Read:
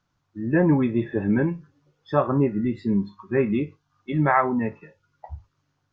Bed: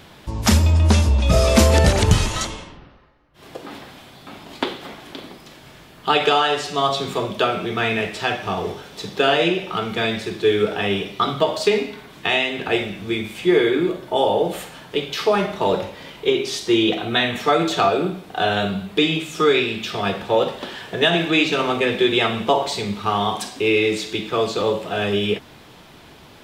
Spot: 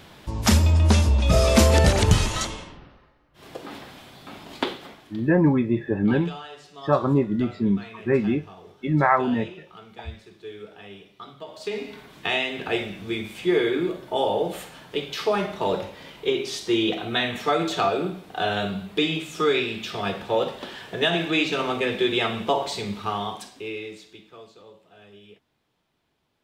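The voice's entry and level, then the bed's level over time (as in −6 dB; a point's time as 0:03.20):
4.75 s, +0.5 dB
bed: 0:04.68 −2.5 dB
0:05.46 −21.5 dB
0:11.41 −21.5 dB
0:11.95 −5 dB
0:22.99 −5 dB
0:24.65 −28.5 dB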